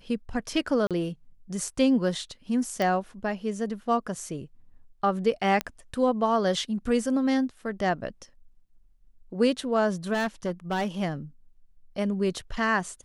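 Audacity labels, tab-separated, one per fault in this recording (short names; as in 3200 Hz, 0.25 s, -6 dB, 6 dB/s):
0.870000	0.910000	gap 37 ms
2.820000	2.820000	pop
5.610000	5.610000	pop -12 dBFS
10.130000	10.870000	clipped -23.5 dBFS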